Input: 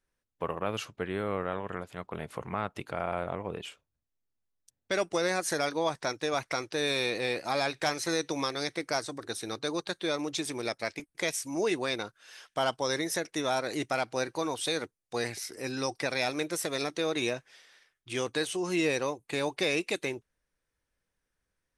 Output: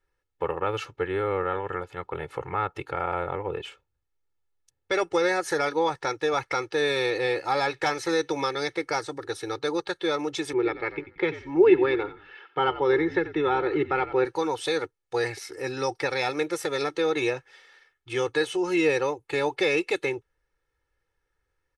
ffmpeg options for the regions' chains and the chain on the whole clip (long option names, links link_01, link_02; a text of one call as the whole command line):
ffmpeg -i in.wav -filter_complex "[0:a]asettb=1/sr,asplit=3[link_01][link_02][link_03];[link_01]atrim=end=10.534[link_04];[link_02]atrim=start=10.53:end=14.25,asetpts=PTS-STARTPTS,afade=type=in:duration=0.004:curve=qsin,afade=type=out:start_time=3.716:duration=0.004:curve=qsin,highpass=110,equalizer=frequency=160:width_type=q:width=4:gain=8,equalizer=frequency=380:width_type=q:width=4:gain=10,equalizer=frequency=610:width_type=q:width=4:gain=-7,lowpass=frequency=3100:width=0.5412,lowpass=frequency=3100:width=1.3066,asplit=4[link_05][link_06][link_07][link_08];[link_06]adelay=90,afreqshift=-57,volume=-14dB[link_09];[link_07]adelay=180,afreqshift=-114,volume=-23.9dB[link_10];[link_08]adelay=270,afreqshift=-171,volume=-33.8dB[link_11];[link_05][link_09][link_10][link_11]amix=inputs=4:normalize=0,atrim=end_sample=164052[link_12];[link_03]atrim=start=14.246[link_13];[link_04][link_12]acrossfade=duration=0.004:curve1=hsin:curve2=qsin[link_14];[link_14][link_13]acrossfade=duration=0.004:curve1=qsin:curve2=hsin,lowpass=frequency=3000:poles=1,equalizer=frequency=1400:width_type=o:width=1.5:gain=3,aecho=1:1:2.3:0.86,volume=2dB" out.wav